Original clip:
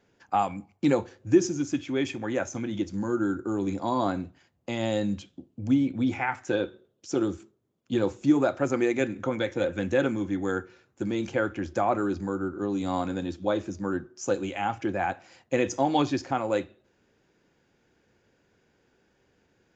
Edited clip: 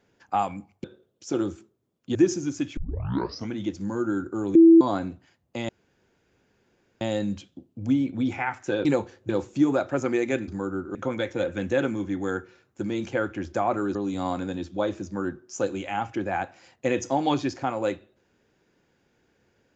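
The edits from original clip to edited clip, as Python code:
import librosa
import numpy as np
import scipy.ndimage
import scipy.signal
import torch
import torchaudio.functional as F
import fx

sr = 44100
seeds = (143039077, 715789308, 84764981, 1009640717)

y = fx.edit(x, sr, fx.swap(start_s=0.84, length_s=0.44, other_s=6.66, other_length_s=1.31),
    fx.tape_start(start_s=1.9, length_s=0.73),
    fx.bleep(start_s=3.68, length_s=0.26, hz=330.0, db=-9.0),
    fx.insert_room_tone(at_s=4.82, length_s=1.32),
    fx.move(start_s=12.16, length_s=0.47, to_s=9.16), tone=tone)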